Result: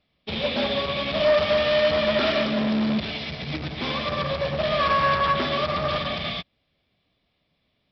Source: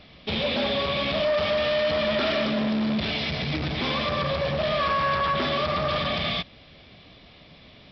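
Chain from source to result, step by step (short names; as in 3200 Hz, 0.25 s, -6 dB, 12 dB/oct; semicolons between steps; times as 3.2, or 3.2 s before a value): upward expander 2.5:1, over -40 dBFS; gain +5.5 dB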